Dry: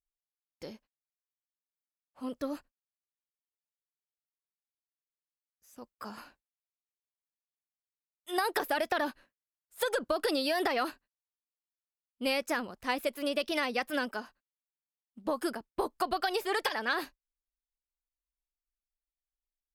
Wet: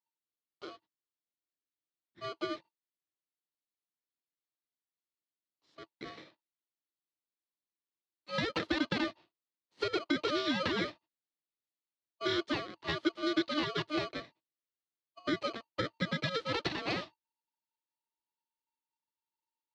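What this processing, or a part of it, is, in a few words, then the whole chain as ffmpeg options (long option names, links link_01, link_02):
ring modulator pedal into a guitar cabinet: -filter_complex "[0:a]aeval=exprs='val(0)*sgn(sin(2*PI*910*n/s))':channel_layout=same,highpass=110,equalizer=frequency=110:width_type=q:width=4:gain=3,equalizer=frequency=320:width_type=q:width=4:gain=9,equalizer=frequency=770:width_type=q:width=4:gain=-5,equalizer=frequency=1500:width_type=q:width=4:gain=-6,equalizer=frequency=2500:width_type=q:width=4:gain=-6,equalizer=frequency=4200:width_type=q:width=4:gain=4,lowpass=frequency=4200:width=0.5412,lowpass=frequency=4200:width=1.3066,asettb=1/sr,asplit=3[link_01][link_02][link_03];[link_01]atrim=end=6.114[link_04];[link_02]atrim=start=6.11:end=8.42,asetpts=PTS-STARTPTS,afade=type=in:duration=0.004:curve=qsin,afade=type=out:start_time=2.306:duration=0.004:curve=qsin,highpass=140[link_05];[link_03]atrim=start=8.416[link_06];[link_04][link_05]acrossfade=duration=0.004:curve1=hsin:curve2=qsin[link_07];[link_07][link_06]acrossfade=duration=0.004:curve1=qsin:curve2=hsin,volume=-1.5dB"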